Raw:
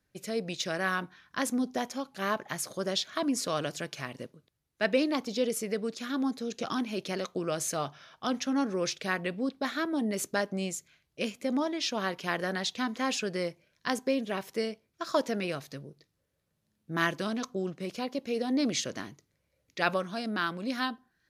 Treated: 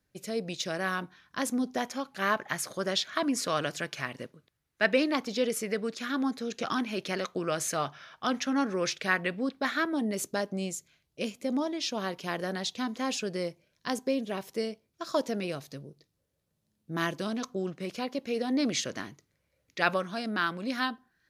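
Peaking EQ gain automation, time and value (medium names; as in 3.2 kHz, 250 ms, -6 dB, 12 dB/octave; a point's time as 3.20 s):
peaking EQ 1.7 kHz 1.5 oct
1.40 s -2 dB
1.99 s +5.5 dB
9.83 s +5.5 dB
10.26 s -4.5 dB
17.17 s -4.5 dB
17.63 s +2.5 dB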